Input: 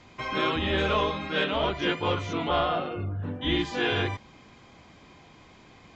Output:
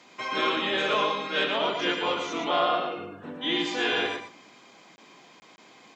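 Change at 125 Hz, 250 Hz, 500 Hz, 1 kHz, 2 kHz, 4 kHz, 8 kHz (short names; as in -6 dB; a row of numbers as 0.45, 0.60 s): -15.0 dB, -2.5 dB, 0.0 dB, +1.5 dB, +2.0 dB, +3.0 dB, n/a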